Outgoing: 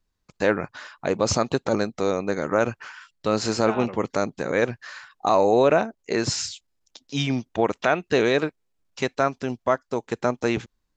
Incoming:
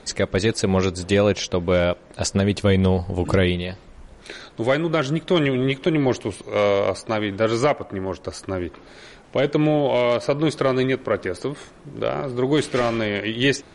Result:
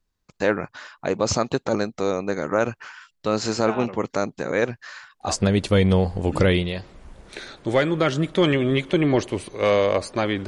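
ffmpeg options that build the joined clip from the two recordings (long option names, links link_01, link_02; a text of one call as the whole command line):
ffmpeg -i cue0.wav -i cue1.wav -filter_complex "[0:a]apad=whole_dur=10.47,atrim=end=10.47,atrim=end=5.36,asetpts=PTS-STARTPTS[link_01];[1:a]atrim=start=2.13:end=7.4,asetpts=PTS-STARTPTS[link_02];[link_01][link_02]acrossfade=duration=0.16:curve1=tri:curve2=tri" out.wav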